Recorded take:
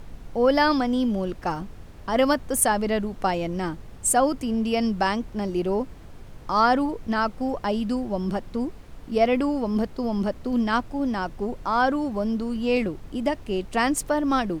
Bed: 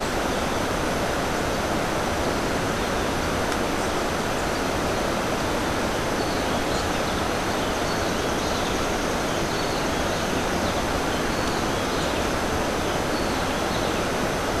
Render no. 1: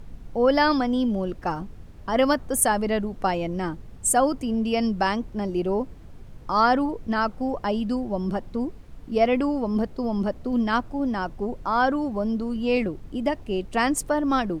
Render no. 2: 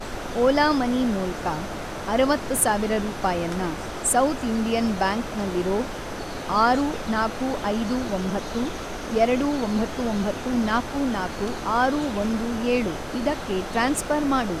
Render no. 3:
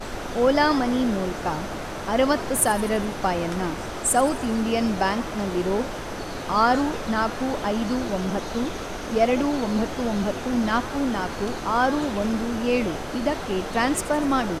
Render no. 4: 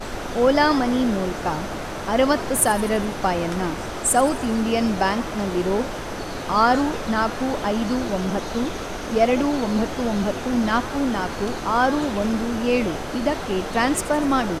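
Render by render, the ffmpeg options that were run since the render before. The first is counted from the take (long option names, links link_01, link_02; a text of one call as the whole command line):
ffmpeg -i in.wav -af "afftdn=noise_reduction=6:noise_floor=-43" out.wav
ffmpeg -i in.wav -i bed.wav -filter_complex "[1:a]volume=-8.5dB[link_01];[0:a][link_01]amix=inputs=2:normalize=0" out.wav
ffmpeg -i in.wav -filter_complex "[0:a]asplit=7[link_01][link_02][link_03][link_04][link_05][link_06][link_07];[link_02]adelay=83,afreqshift=88,volume=-17dB[link_08];[link_03]adelay=166,afreqshift=176,volume=-21.3dB[link_09];[link_04]adelay=249,afreqshift=264,volume=-25.6dB[link_10];[link_05]adelay=332,afreqshift=352,volume=-29.9dB[link_11];[link_06]adelay=415,afreqshift=440,volume=-34.2dB[link_12];[link_07]adelay=498,afreqshift=528,volume=-38.5dB[link_13];[link_01][link_08][link_09][link_10][link_11][link_12][link_13]amix=inputs=7:normalize=0" out.wav
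ffmpeg -i in.wav -af "volume=2dB" out.wav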